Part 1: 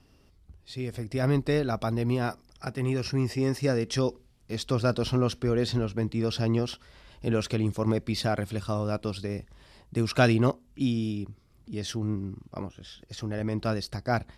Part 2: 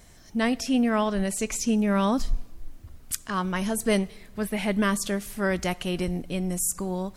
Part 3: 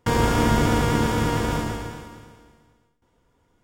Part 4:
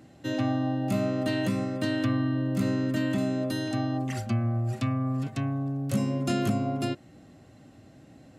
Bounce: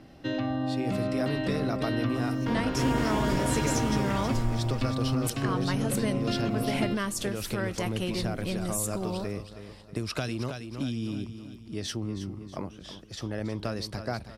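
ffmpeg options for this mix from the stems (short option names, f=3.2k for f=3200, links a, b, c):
-filter_complex "[0:a]acrossover=split=130|3000[a][b][c];[b]acompressor=threshold=-26dB:ratio=6[d];[a][d][c]amix=inputs=3:normalize=0,volume=1dB,asplit=2[e][f];[f]volume=-12.5dB[g];[1:a]adelay=2150,volume=1dB[h];[2:a]adelay=2400,volume=-6dB,asplit=2[i][j];[j]volume=-6dB[k];[3:a]volume=2dB[l];[i][l]amix=inputs=2:normalize=0,lowpass=f=4.8k:w=0.5412,lowpass=f=4.8k:w=1.3066,alimiter=limit=-20dB:level=0:latency=1:release=361,volume=0dB[m];[e][h]amix=inputs=2:normalize=0,acompressor=threshold=-26dB:ratio=6,volume=0dB[n];[g][k]amix=inputs=2:normalize=0,aecho=0:1:320|640|960|1280|1600|1920:1|0.44|0.194|0.0852|0.0375|0.0165[o];[m][n][o]amix=inputs=3:normalize=0,equalizer=f=110:t=o:w=2.1:g=-2.5"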